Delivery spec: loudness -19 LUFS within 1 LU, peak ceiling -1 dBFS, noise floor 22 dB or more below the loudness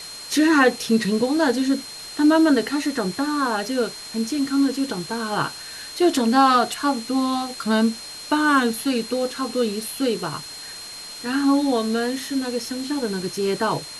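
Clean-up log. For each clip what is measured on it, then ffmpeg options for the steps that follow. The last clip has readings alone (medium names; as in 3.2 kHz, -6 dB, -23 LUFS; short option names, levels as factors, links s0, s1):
steady tone 4.2 kHz; tone level -36 dBFS; noise floor -37 dBFS; noise floor target -44 dBFS; loudness -21.5 LUFS; peak level -5.5 dBFS; loudness target -19.0 LUFS
-> -af "bandreject=f=4200:w=30"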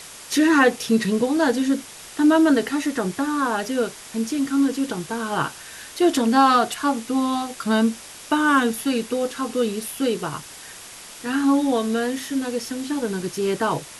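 steady tone not found; noise floor -41 dBFS; noise floor target -44 dBFS
-> -af "afftdn=nr=6:nf=-41"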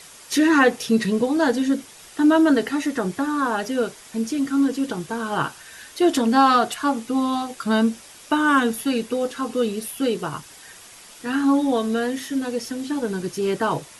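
noise floor -45 dBFS; loudness -22.0 LUFS; peak level -5.5 dBFS; loudness target -19.0 LUFS
-> -af "volume=1.41"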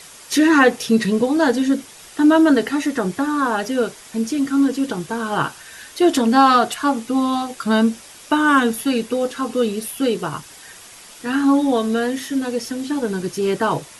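loudness -19.0 LUFS; peak level -2.5 dBFS; noise floor -42 dBFS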